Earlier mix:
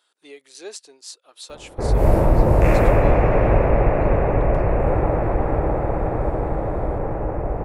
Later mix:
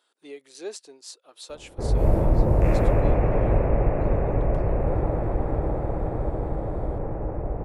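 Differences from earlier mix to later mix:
background −7.5 dB
master: add tilt shelving filter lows +4 dB, about 680 Hz

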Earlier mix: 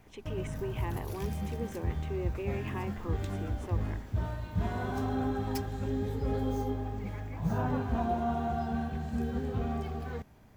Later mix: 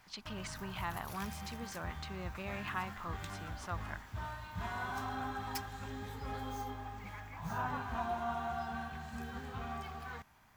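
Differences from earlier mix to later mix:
speech: remove phaser with its sweep stopped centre 940 Hz, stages 8
master: add low shelf with overshoot 700 Hz −11.5 dB, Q 1.5

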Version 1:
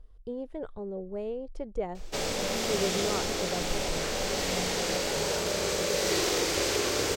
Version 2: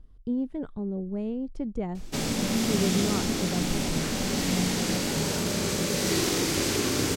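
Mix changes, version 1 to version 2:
background: add parametric band 11,000 Hz +8 dB 0.56 octaves
master: add octave-band graphic EQ 125/250/500 Hz +9/+12/−7 dB

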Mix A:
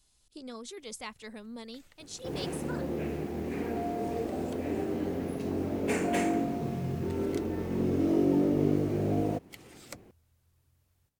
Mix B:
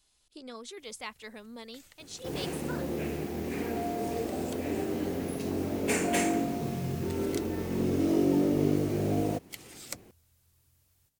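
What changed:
speech: add bass and treble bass −6 dB, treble −11 dB
master: add high-shelf EQ 3,100 Hz +10 dB

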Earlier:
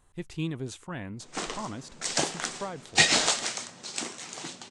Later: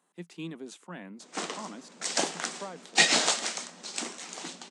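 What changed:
speech −4.0 dB
master: add Chebyshev high-pass filter 170 Hz, order 6

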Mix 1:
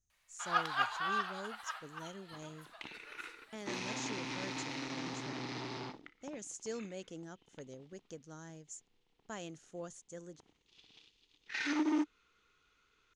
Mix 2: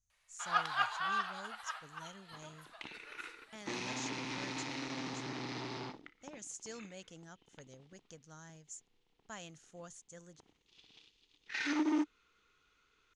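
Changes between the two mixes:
speech: add parametric band 350 Hz −10.5 dB 1.5 octaves
master: add linear-phase brick-wall low-pass 12,000 Hz

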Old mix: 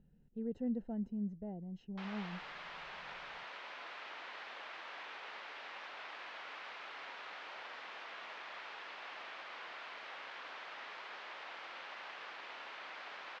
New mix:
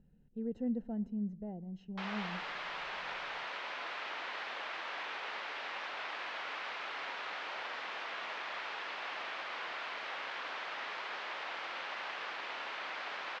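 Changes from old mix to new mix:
background +7.0 dB
reverb: on, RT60 0.80 s

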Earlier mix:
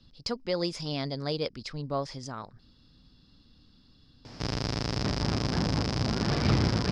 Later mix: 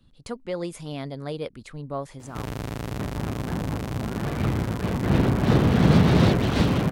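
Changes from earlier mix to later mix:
background: entry −2.05 s
master: remove low-pass with resonance 5,100 Hz, resonance Q 8.2

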